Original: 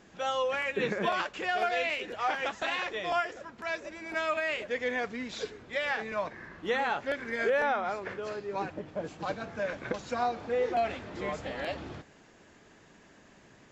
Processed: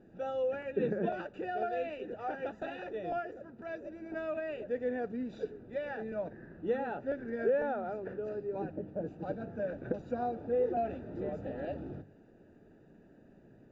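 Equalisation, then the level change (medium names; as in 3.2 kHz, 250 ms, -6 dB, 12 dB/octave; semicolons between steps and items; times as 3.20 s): boxcar filter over 41 samples; peaking EQ 67 Hz -7.5 dB 0.28 oct; hum notches 50/100/150/200 Hz; +2.5 dB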